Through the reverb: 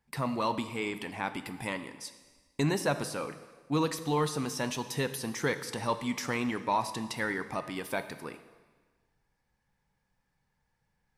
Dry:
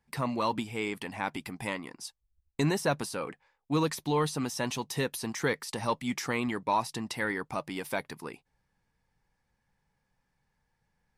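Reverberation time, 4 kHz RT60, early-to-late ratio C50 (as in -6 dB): 1.4 s, 1.3 s, 12.0 dB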